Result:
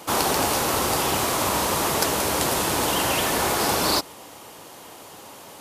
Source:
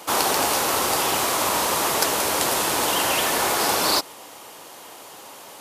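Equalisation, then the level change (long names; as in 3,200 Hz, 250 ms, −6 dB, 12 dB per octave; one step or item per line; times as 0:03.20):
low-shelf EQ 230 Hz +12 dB
−2.0 dB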